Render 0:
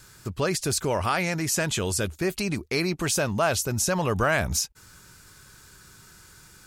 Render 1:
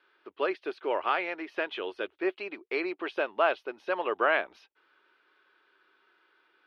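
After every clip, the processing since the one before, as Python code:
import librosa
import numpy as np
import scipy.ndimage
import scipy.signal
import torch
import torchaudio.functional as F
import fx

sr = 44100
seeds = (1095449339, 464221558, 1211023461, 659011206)

y = scipy.signal.sosfilt(scipy.signal.ellip(3, 1.0, 40, [340.0, 3200.0], 'bandpass', fs=sr, output='sos'), x)
y = fx.upward_expand(y, sr, threshold_db=-41.0, expansion=1.5)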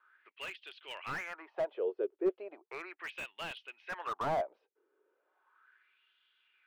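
y = fx.wah_lfo(x, sr, hz=0.36, low_hz=410.0, high_hz=3200.0, q=4.8)
y = fx.slew_limit(y, sr, full_power_hz=14.0)
y = y * librosa.db_to_amplitude(5.5)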